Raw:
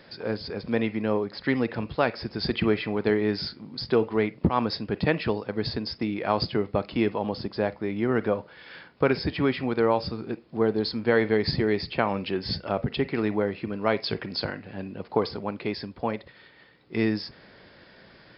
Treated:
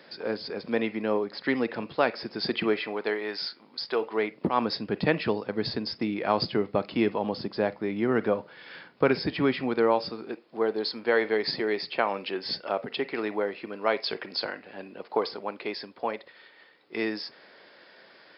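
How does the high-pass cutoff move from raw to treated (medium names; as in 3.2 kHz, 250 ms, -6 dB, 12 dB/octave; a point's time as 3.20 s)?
2.53 s 240 Hz
3.20 s 600 Hz
3.90 s 600 Hz
4.85 s 150 Hz
9.51 s 150 Hz
10.42 s 390 Hz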